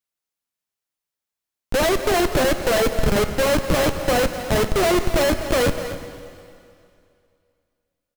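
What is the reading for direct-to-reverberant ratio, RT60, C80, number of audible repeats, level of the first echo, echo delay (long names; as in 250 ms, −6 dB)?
7.5 dB, 2.5 s, 8.5 dB, 1, −12.5 dB, 249 ms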